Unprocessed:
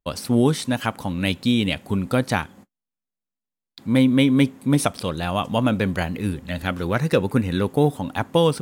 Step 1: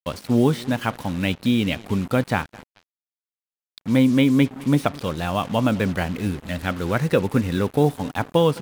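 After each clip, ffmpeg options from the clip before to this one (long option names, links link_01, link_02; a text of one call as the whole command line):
ffmpeg -i in.wav -filter_complex "[0:a]acrossover=split=3600[link_01][link_02];[link_02]acompressor=threshold=-45dB:ratio=6[link_03];[link_01][link_03]amix=inputs=2:normalize=0,aecho=1:1:212|424|636:0.0841|0.0362|0.0156,acrusher=bits=5:mix=0:aa=0.5" out.wav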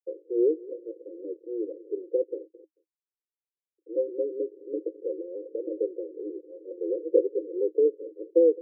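ffmpeg -i in.wav -af "asuperpass=centerf=410:order=20:qfactor=1.8" out.wav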